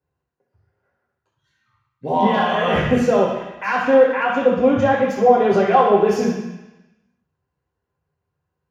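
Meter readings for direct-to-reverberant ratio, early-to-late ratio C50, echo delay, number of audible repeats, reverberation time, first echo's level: -4.5 dB, 3.0 dB, no echo, no echo, 1.0 s, no echo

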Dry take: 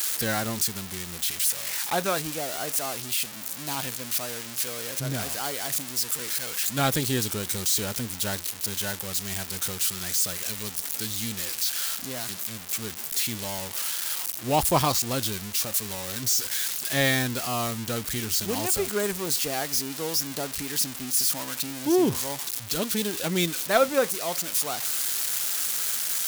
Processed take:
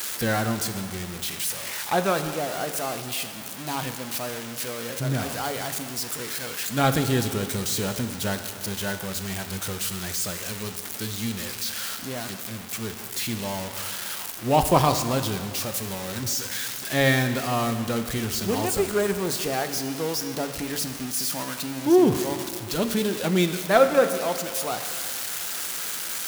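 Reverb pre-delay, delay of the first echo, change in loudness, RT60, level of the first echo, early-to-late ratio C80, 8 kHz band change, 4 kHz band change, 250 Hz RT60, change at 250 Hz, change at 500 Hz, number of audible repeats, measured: 4 ms, no echo, 0.0 dB, 2.1 s, no echo, 10.0 dB, -3.5 dB, -1.0 dB, 2.1 s, +4.5 dB, +4.5 dB, no echo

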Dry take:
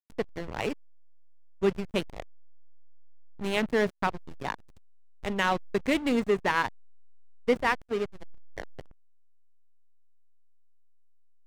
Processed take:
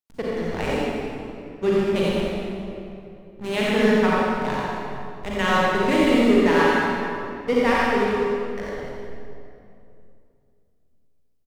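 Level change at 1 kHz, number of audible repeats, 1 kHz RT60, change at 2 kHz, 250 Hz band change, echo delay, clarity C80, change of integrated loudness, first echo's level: +8.0 dB, 1, 2.4 s, +7.5 dB, +10.5 dB, 88 ms, -4.0 dB, +7.5 dB, -3.5 dB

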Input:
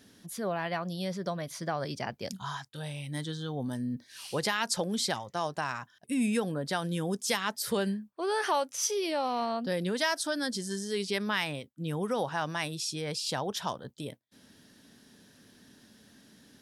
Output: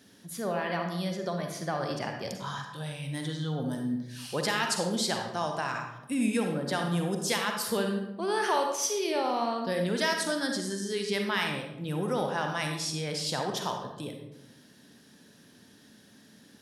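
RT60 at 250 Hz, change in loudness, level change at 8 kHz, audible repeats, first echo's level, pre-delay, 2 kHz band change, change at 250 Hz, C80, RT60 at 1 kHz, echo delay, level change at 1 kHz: 1.2 s, +1.5 dB, +1.0 dB, no echo, no echo, 39 ms, +2.0 dB, +2.0 dB, 7.0 dB, 0.85 s, no echo, +2.0 dB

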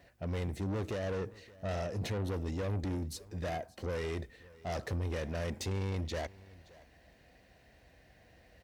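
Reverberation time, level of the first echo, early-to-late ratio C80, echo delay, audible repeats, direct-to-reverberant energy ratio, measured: no reverb, -21.5 dB, no reverb, 572 ms, 1, no reverb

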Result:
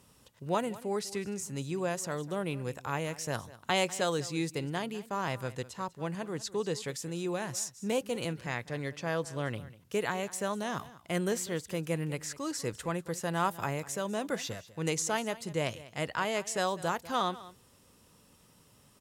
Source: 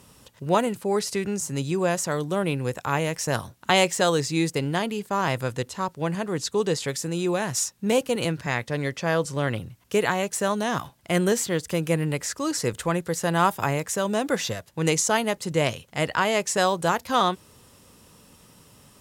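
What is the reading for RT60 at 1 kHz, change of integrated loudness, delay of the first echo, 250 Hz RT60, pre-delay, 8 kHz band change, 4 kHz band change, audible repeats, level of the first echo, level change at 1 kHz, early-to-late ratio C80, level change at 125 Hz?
no reverb, -9.0 dB, 197 ms, no reverb, no reverb, -9.0 dB, -9.0 dB, 1, -18.0 dB, -9.0 dB, no reverb, -9.0 dB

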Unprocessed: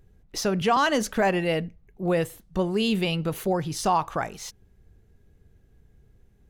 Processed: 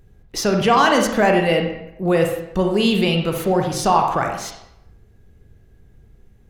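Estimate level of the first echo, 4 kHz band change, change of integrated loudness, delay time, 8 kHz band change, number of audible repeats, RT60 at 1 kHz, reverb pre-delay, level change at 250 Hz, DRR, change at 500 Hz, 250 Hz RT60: no echo, +7.0 dB, +7.5 dB, no echo, +5.5 dB, no echo, 0.85 s, 34 ms, +7.0 dB, 2.5 dB, +7.5 dB, 0.75 s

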